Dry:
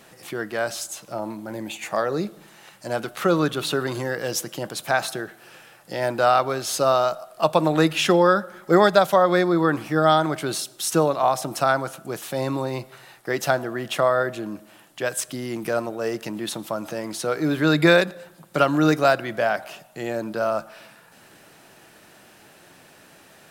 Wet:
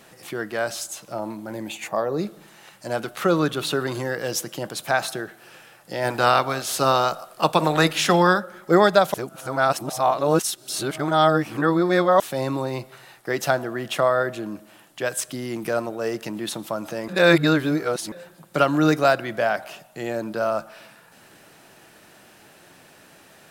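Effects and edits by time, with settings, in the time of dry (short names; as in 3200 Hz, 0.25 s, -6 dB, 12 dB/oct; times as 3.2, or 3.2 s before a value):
1.87–2.19 spectral gain 1200–11000 Hz -8 dB
6.04–8.38 spectral limiter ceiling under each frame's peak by 12 dB
9.14–12.2 reverse
17.08–18.12 reverse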